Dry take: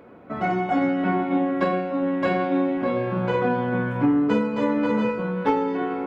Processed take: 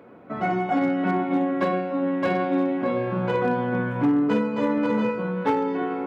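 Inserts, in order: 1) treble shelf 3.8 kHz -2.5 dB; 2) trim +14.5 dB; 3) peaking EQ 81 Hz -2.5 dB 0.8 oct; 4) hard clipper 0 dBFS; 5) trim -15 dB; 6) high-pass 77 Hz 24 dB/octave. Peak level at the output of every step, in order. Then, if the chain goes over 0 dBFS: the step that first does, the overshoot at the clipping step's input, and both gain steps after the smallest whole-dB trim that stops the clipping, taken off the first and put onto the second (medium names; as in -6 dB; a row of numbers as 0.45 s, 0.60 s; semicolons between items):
-10.0 dBFS, +4.5 dBFS, +4.5 dBFS, 0.0 dBFS, -15.0 dBFS, -11.0 dBFS; step 2, 4.5 dB; step 2 +9.5 dB, step 5 -10 dB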